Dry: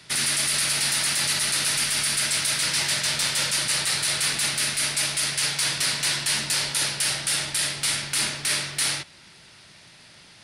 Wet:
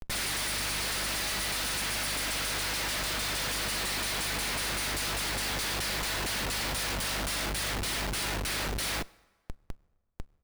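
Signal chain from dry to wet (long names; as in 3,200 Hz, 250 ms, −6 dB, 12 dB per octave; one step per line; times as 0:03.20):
Butterworth high-pass 170 Hz 48 dB per octave
bass and treble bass −8 dB, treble 0 dB
comb filter 6.1 ms, depth 39%
in parallel at −1.5 dB: downward compressor 10 to 1, threshold −31 dBFS, peak gain reduction 12 dB
on the sum: brickwall limiter −13.5 dBFS, peak gain reduction 5.5 dB
mains hum 50 Hz, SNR 12 dB
comparator with hysteresis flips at −27.5 dBFS
on a send at −21 dB: convolution reverb RT60 1.4 s, pre-delay 6 ms
on the sum: level −7 dB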